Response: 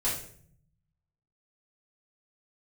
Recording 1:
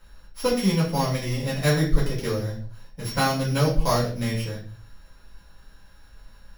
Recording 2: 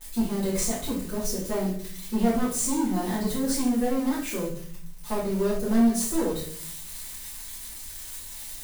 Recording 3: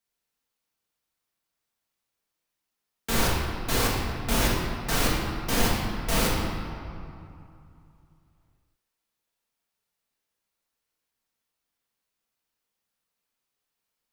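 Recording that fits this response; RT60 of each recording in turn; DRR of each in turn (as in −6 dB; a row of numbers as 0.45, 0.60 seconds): 2; 0.45, 0.55, 2.6 seconds; −8.5, −9.5, −5.5 decibels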